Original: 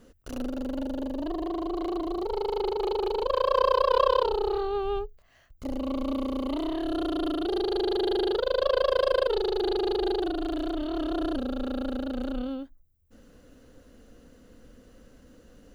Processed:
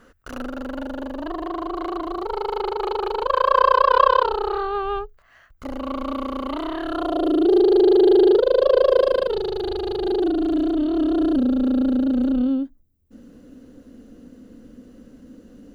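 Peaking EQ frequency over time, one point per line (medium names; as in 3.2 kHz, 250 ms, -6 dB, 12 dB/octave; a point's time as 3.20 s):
peaking EQ +13.5 dB 1.4 oct
6.91 s 1.4 kHz
7.35 s 370 Hz
8.98 s 370 Hz
9.81 s 63 Hz
10.15 s 250 Hz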